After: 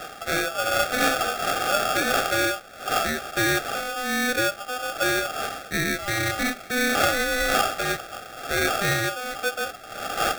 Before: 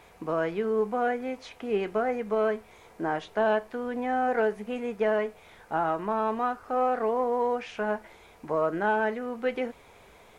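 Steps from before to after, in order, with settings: wind noise 330 Hz -29 dBFS; brick-wall FIR band-pass 180–1500 Hz; polarity switched at an audio rate 1000 Hz; gain +2 dB

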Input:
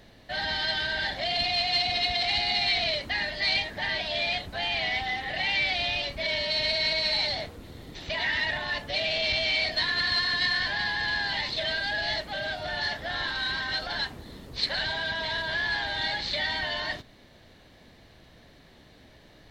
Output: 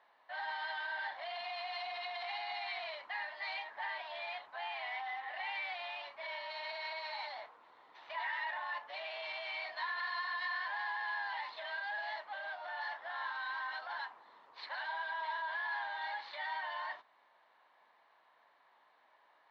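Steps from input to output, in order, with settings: ladder band-pass 1100 Hz, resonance 60%; gain +2.5 dB

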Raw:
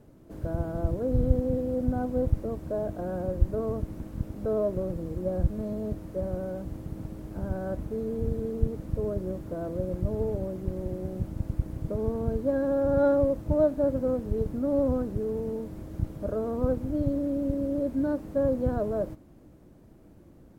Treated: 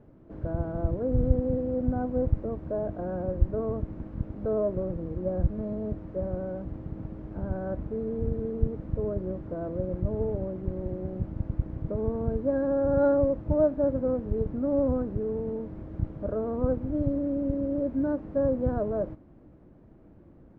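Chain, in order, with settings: LPF 2000 Hz 12 dB/oct

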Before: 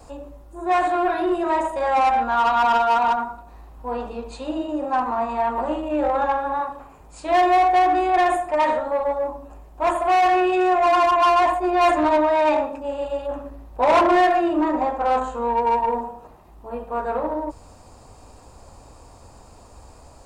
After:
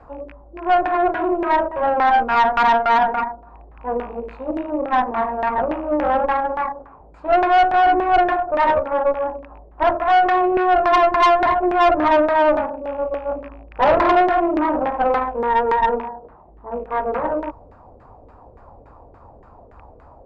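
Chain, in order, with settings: rattling part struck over -38 dBFS, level -26 dBFS; LFO low-pass saw down 3.5 Hz 430–1800 Hz; tube stage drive 12 dB, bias 0.65; gain +2.5 dB

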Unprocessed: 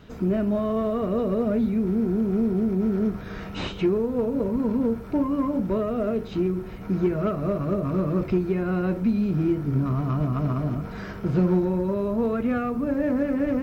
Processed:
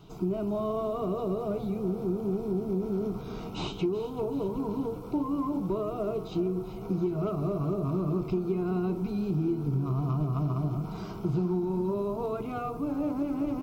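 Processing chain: fixed phaser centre 350 Hz, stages 8; compressor, threshold -25 dBFS, peak gain reduction 7.5 dB; frequency-shifting echo 0.381 s, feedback 54%, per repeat +30 Hz, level -15 dB

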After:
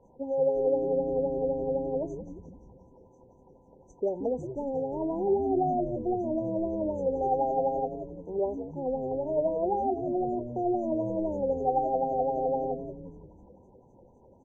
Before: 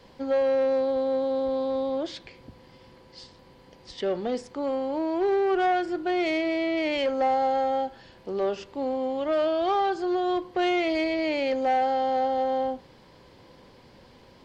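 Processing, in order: LFO low-pass sine 3.9 Hz 430–5100 Hz; brick-wall FIR band-stop 1000–5900 Hz; frequency-shifting echo 0.177 s, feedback 54%, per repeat -120 Hz, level -9 dB; gain -6 dB

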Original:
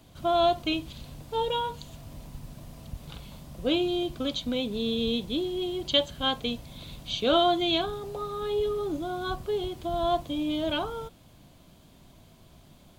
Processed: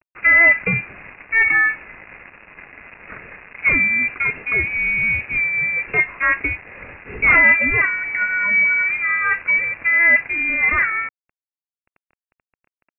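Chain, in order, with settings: HPF 470 Hz 12 dB/oct; in parallel at -3.5 dB: soft clip -21 dBFS, distortion -14 dB; on the sum: added harmonics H 5 -8 dB, 6 -15 dB, 7 -45 dB, 8 -16 dB, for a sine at -8.5 dBFS; bit-crush 6-bit; inverted band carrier 2700 Hz; gain +2.5 dB

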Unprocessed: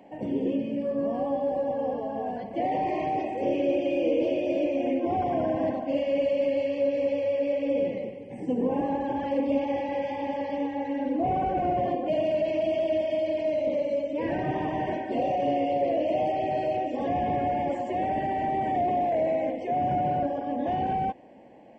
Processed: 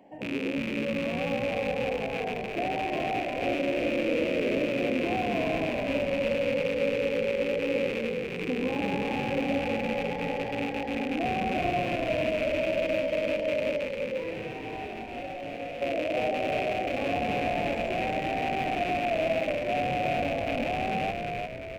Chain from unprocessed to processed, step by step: rattling part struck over -39 dBFS, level -20 dBFS; 13.86–15.82 resonator 110 Hz, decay 0.42 s, harmonics all, mix 80%; on a send: frequency-shifting echo 0.35 s, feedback 53%, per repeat -53 Hz, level -3.5 dB; on the sum: gain -4 dB

